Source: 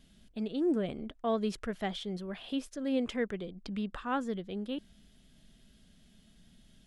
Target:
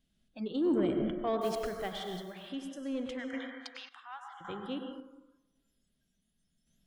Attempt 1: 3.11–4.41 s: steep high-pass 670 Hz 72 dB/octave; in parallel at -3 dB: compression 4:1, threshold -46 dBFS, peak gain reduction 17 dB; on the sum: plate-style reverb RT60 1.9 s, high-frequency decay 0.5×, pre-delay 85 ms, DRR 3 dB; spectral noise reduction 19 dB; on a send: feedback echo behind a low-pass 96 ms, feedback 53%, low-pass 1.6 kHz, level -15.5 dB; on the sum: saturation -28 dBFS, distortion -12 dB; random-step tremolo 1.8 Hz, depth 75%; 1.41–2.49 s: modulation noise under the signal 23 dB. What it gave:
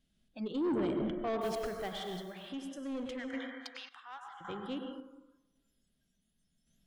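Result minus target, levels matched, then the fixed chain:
saturation: distortion +9 dB
3.11–4.41 s: steep high-pass 670 Hz 72 dB/octave; in parallel at -3 dB: compression 4:1, threshold -46 dBFS, peak gain reduction 17 dB; on the sum: plate-style reverb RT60 1.9 s, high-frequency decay 0.5×, pre-delay 85 ms, DRR 3 dB; spectral noise reduction 19 dB; on a send: feedback echo behind a low-pass 96 ms, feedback 53%, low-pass 1.6 kHz, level -15.5 dB; on the sum: saturation -20.5 dBFS, distortion -21 dB; random-step tremolo 1.8 Hz, depth 75%; 1.41–2.49 s: modulation noise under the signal 23 dB

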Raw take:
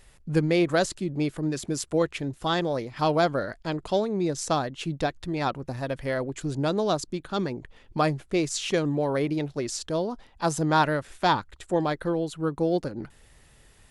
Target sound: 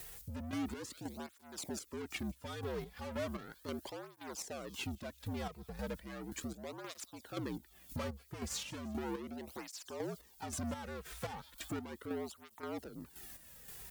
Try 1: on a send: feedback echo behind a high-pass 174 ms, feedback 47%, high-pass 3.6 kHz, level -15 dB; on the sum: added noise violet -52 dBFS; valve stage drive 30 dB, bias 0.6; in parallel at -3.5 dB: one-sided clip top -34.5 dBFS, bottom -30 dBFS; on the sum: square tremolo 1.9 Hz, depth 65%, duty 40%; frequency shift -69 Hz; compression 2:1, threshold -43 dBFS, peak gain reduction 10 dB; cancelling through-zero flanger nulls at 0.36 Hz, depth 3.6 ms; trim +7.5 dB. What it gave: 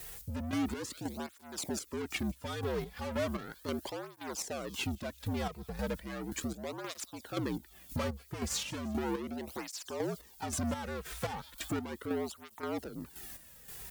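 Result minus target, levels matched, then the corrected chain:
compression: peak gain reduction -5.5 dB
on a send: feedback echo behind a high-pass 174 ms, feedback 47%, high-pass 3.6 kHz, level -15 dB; on the sum: added noise violet -52 dBFS; valve stage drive 30 dB, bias 0.6; in parallel at -3.5 dB: one-sided clip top -34.5 dBFS, bottom -30 dBFS; on the sum: square tremolo 1.9 Hz, depth 65%, duty 40%; frequency shift -69 Hz; compression 2:1, threshold -54 dBFS, peak gain reduction 15.5 dB; cancelling through-zero flanger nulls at 0.36 Hz, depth 3.6 ms; trim +7.5 dB

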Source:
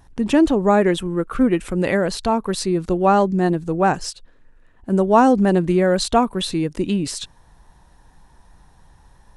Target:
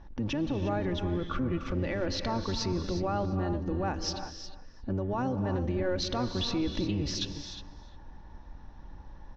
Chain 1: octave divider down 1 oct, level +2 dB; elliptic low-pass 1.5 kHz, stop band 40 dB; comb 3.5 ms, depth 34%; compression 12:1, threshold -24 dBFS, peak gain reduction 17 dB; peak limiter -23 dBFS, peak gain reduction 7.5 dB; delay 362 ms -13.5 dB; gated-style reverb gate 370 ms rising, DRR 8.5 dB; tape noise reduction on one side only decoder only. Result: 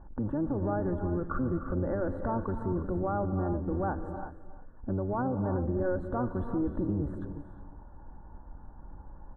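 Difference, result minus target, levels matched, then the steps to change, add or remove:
2 kHz band -4.0 dB
change: elliptic low-pass 5.9 kHz, stop band 40 dB

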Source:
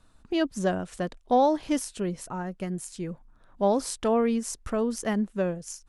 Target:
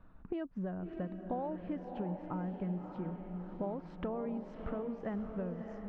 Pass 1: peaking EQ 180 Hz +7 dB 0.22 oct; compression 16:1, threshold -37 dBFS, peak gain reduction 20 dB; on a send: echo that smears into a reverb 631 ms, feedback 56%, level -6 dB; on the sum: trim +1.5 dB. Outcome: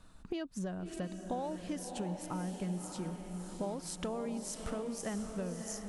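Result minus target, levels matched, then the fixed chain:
2 kHz band +3.5 dB
Bessel low-pass 1.5 kHz, order 4; peaking EQ 180 Hz +7 dB 0.22 oct; compression 16:1, threshold -37 dBFS, peak gain reduction 19.5 dB; on a send: echo that smears into a reverb 631 ms, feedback 56%, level -6 dB; on the sum: trim +1.5 dB

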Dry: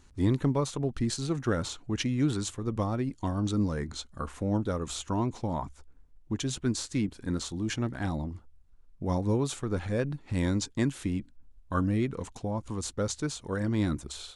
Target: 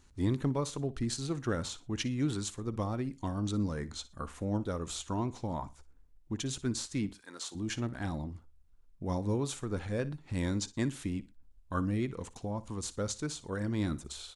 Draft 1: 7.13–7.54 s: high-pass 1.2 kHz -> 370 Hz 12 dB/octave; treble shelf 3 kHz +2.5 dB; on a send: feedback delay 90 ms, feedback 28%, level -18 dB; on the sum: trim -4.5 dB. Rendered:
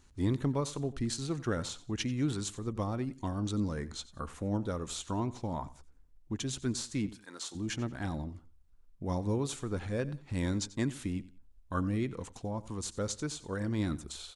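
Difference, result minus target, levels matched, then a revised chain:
echo 31 ms late
7.13–7.54 s: high-pass 1.2 kHz -> 370 Hz 12 dB/octave; treble shelf 3 kHz +2.5 dB; on a send: feedback delay 59 ms, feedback 28%, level -18 dB; on the sum: trim -4.5 dB

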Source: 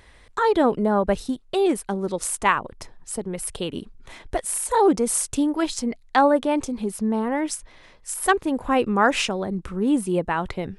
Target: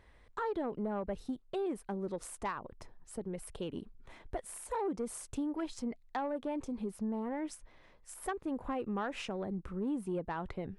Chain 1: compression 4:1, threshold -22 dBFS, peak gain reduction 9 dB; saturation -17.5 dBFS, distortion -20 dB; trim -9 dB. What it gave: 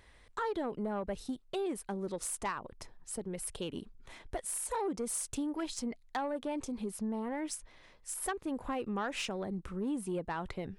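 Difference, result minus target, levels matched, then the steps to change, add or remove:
4 kHz band +5.0 dB
add after compression: treble shelf 2.6 kHz -11 dB

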